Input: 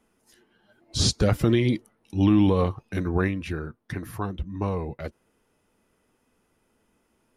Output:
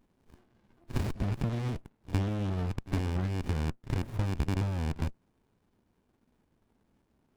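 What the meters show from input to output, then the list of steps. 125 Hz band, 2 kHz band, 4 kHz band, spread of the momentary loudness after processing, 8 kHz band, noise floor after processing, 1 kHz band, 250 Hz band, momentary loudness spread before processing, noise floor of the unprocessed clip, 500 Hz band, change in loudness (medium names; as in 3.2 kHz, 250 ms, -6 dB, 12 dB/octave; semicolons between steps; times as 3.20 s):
-4.0 dB, -8.5 dB, -15.5 dB, 5 LU, -17.0 dB, -74 dBFS, -8.0 dB, -11.0 dB, 15 LU, -70 dBFS, -13.0 dB, -8.0 dB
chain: rattle on loud lows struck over -33 dBFS, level -16 dBFS; treble shelf 7.7 kHz +7 dB; pre-echo 61 ms -19 dB; compression 6:1, threshold -28 dBFS, peak gain reduction 13 dB; sliding maximum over 65 samples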